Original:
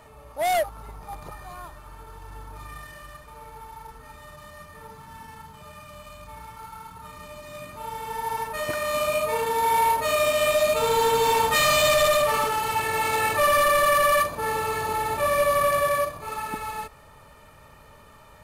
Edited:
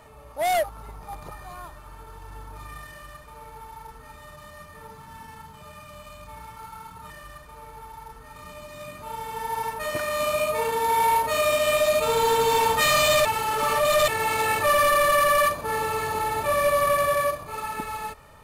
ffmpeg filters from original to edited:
-filter_complex "[0:a]asplit=5[a][b][c][d][e];[a]atrim=end=7.102[f];[b]atrim=start=2.888:end=4.152[g];[c]atrim=start=7.098:end=11.992[h];[d]atrim=start=11.988:end=12.822,asetpts=PTS-STARTPTS,areverse[i];[e]atrim=start=12.818[j];[f][g]acrossfade=d=0.004:c1=hsin:c2=hsin[k];[k][h]acrossfade=d=0.004:c1=hsin:c2=hsin[l];[l][i]acrossfade=d=0.004:c1=hsin:c2=hsin[m];[m][j]acrossfade=d=0.004:c1=hsin:c2=hsin"

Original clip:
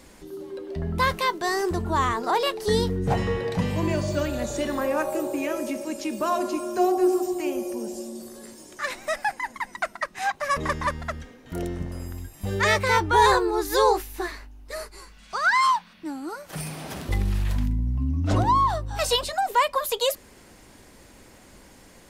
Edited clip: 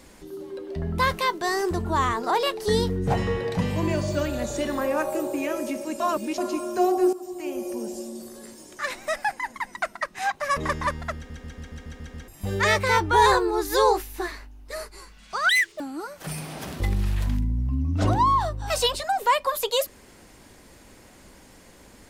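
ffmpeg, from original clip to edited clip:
-filter_complex "[0:a]asplit=14[a][b][c][d][e][f][g][h][i][j][k][l][m][n];[a]atrim=end=6.002[o];[b]atrim=start=5.998:end=6.382,asetpts=PTS-STARTPTS,areverse[p];[c]atrim=start=6.378:end=7.13,asetpts=PTS-STARTPTS,afade=t=out:st=0.748:d=0.004:c=hsin:silence=0.149624[q];[d]atrim=start=7.13:end=11.302,asetpts=PTS-STARTPTS,afade=t=in:d=0.61:silence=0.149624[r];[e]atrim=start=11.158:end=11.302[s];[f]atrim=start=11.158:end=11.302[t];[g]atrim=start=11.158:end=11.302[u];[h]atrim=start=11.158:end=11.302[v];[i]atrim=start=11.158:end=11.302[w];[j]atrim=start=11.158:end=11.302[x];[k]atrim=start=11.158:end=11.302[y];[l]atrim=start=12.278:end=15.494[z];[m]atrim=start=15.49:end=16.09,asetpts=PTS-STARTPTS,asetrate=84672,aresample=44100,atrim=end_sample=13781,asetpts=PTS-STARTPTS[aa];[n]atrim=start=16.086[ab];[o][p]acrossfade=d=0.004:c1=hsin:c2=hsin[ac];[q][r]concat=n=2:v=0:a=1[ad];[ac][ad]acrossfade=d=0.004:c1=hsin:c2=hsin[ae];[ae][s]acrossfade=d=0.004:c1=hsin:c2=hsin[af];[af][t]acrossfade=d=0.004:c1=hsin:c2=hsin[ag];[ag][u]acrossfade=d=0.004:c1=hsin:c2=hsin[ah];[ah][v]acrossfade=d=0.004:c1=hsin:c2=hsin[ai];[ai][w]acrossfade=d=0.004:c1=hsin:c2=hsin[aj];[aj][x]acrossfade=d=0.004:c1=hsin:c2=hsin[ak];[ak][y]acrossfade=d=0.004:c1=hsin:c2=hsin[al];[al][z]acrossfade=d=0.004:c1=hsin:c2=hsin[am];[am][aa]acrossfade=d=0.004:c1=hsin:c2=hsin[an];[an][ab]acrossfade=d=0.004:c1=hsin:c2=hsin"

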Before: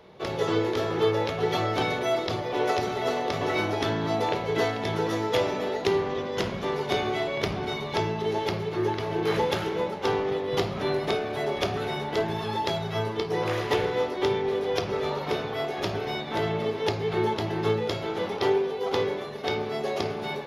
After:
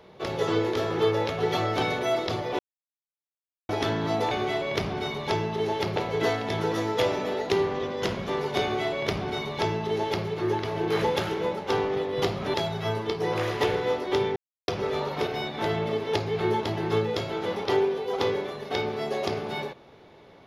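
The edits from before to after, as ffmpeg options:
-filter_complex "[0:a]asplit=9[a][b][c][d][e][f][g][h][i];[a]atrim=end=2.59,asetpts=PTS-STARTPTS,afade=t=out:st=2.586:d=0.004:c=hsin[j];[b]atrim=start=2.59:end=3.69,asetpts=PTS-STARTPTS,volume=0[k];[c]atrim=start=3.69:end=4.312,asetpts=PTS-STARTPTS,afade=t=in:d=0.004:c=hsin[l];[d]atrim=start=6.968:end=8.622[m];[e]atrim=start=4.308:end=10.892[n];[f]atrim=start=12.638:end=14.46,asetpts=PTS-STARTPTS,afade=t=out:st=1.818:d=0.004:c=hsin[o];[g]atrim=start=14.46:end=14.78,asetpts=PTS-STARTPTS,volume=0[p];[h]atrim=start=14.78:end=15.372,asetpts=PTS-STARTPTS,afade=t=in:d=0.004:c=hsin[q];[i]atrim=start=15.998[r];[j][k][l]concat=n=3:v=0:a=1[s];[s][m]acrossfade=d=0.004:c1=hsin:c2=hsin[t];[t][n]acrossfade=d=0.004:c1=hsin:c2=hsin[u];[o][p][q]concat=n=3:v=0:a=1[v];[u][v]acrossfade=d=0.004:c1=hsin:c2=hsin[w];[w][r]acrossfade=d=0.004:c1=hsin:c2=hsin"

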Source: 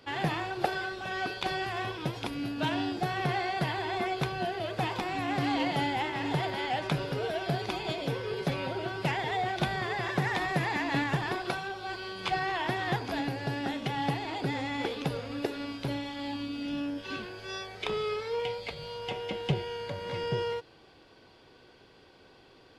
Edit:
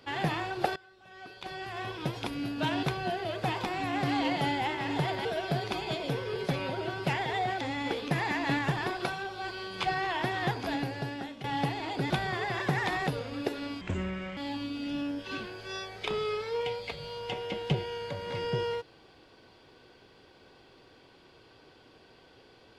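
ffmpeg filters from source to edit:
-filter_complex "[0:a]asplit=11[a][b][c][d][e][f][g][h][i][j][k];[a]atrim=end=0.76,asetpts=PTS-STARTPTS,afade=t=out:st=0.756:d=0.004:c=hsin:silence=0.0749894[l];[b]atrim=start=0.76:end=2.832,asetpts=PTS-STARTPTS,afade=t=in:d=1.3:c=qua:silence=0.0749894[m];[c]atrim=start=4.178:end=6.602[n];[d]atrim=start=7.228:end=9.592[o];[e]atrim=start=14.548:end=15.052[p];[f]atrim=start=10.558:end=13.89,asetpts=PTS-STARTPTS,afade=t=out:st=2.732:d=0.6:silence=0.251189[q];[g]atrim=start=13.89:end=14.552,asetpts=PTS-STARTPTS,afade=t=in:d=0.004:c=hsin:silence=0.251189[r];[h]atrim=start=9.588:end=10.562[s];[i]atrim=start=15.048:end=15.794[t];[j]atrim=start=15.79:end=16.16,asetpts=PTS-STARTPTS,asetrate=29106,aresample=44100[u];[k]atrim=start=16.156[v];[l][m]concat=n=2:v=0:a=1[w];[w][n]acrossfade=d=0.004:c1=hsin:c2=hsin[x];[x][o]acrossfade=d=0.004:c1=hsin:c2=hsin[y];[y][p]acrossfade=d=0.004:c1=hsin:c2=hsin[z];[q][r]concat=n=2:v=0:a=1[aa];[z][aa]acrossfade=d=0.004:c1=hsin:c2=hsin[ab];[ab][s]acrossfade=d=0.004:c1=hsin:c2=hsin[ac];[ac][t]acrossfade=d=0.004:c1=hsin:c2=hsin[ad];[ad][u]acrossfade=d=0.004:c1=hsin:c2=hsin[ae];[ae][v]acrossfade=d=0.004:c1=hsin:c2=hsin"

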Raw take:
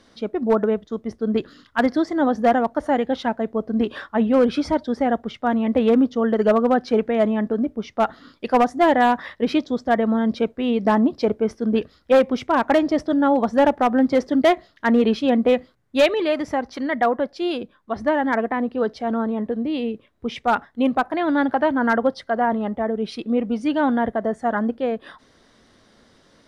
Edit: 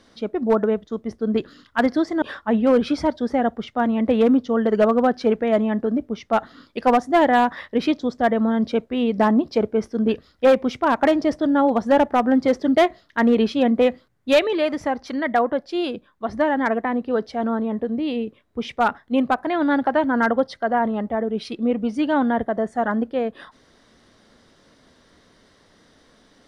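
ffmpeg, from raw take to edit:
-filter_complex "[0:a]asplit=2[a][b];[a]atrim=end=2.222[c];[b]atrim=start=3.888[d];[c][d]acrossfade=d=0.004:c1=hsin:c2=hsin"

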